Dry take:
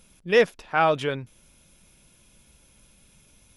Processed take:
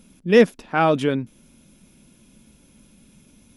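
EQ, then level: peaking EQ 240 Hz +14.5 dB 1.2 oct; dynamic bell 9.7 kHz, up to +5 dB, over -47 dBFS, Q 0.82; 0.0 dB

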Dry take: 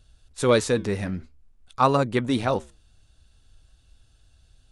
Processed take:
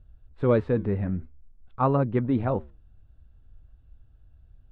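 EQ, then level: low-pass 1.5 kHz 6 dB/octave; distance through air 470 m; bass shelf 200 Hz +6.5 dB; -2.0 dB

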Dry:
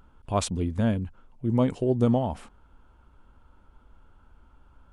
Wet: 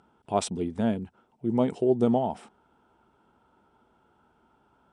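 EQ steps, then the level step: cabinet simulation 280–8000 Hz, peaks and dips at 280 Hz -7 dB, 540 Hz -9 dB, 1.1 kHz -9 dB, 1.6 kHz -4 dB, 4.5 kHz -6 dB, 6.7 kHz -10 dB; peaking EQ 2.5 kHz -9 dB 1.7 oct; +7.0 dB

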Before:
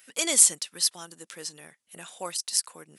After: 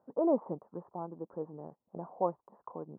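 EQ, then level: steep low-pass 1 kHz 48 dB/octave; +6.5 dB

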